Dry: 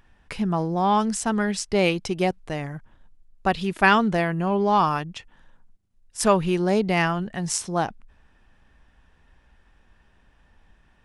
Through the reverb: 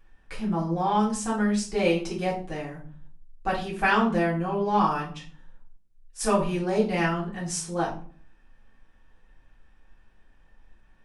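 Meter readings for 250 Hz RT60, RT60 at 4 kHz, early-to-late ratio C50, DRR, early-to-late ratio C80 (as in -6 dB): 0.65 s, 0.30 s, 8.5 dB, -6.5 dB, 13.5 dB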